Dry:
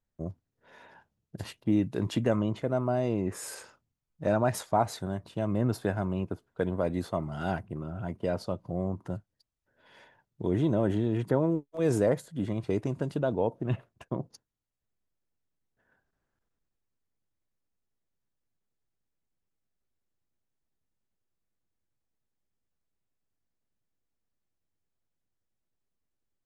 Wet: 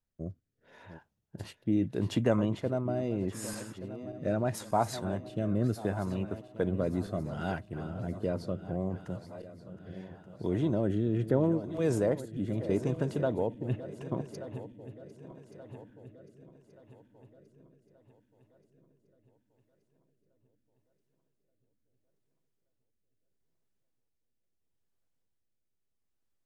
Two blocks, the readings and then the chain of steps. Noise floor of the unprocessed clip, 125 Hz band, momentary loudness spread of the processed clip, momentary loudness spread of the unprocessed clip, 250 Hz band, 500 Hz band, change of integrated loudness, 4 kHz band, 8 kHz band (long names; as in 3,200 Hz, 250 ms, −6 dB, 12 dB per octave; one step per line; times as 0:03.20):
−84 dBFS, −1.0 dB, 19 LU, 11 LU, −1.0 dB, −2.0 dB, −2.0 dB, −2.0 dB, −2.0 dB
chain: feedback delay that plays each chunk backwards 589 ms, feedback 69%, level −13.5 dB
rotating-speaker cabinet horn 0.75 Hz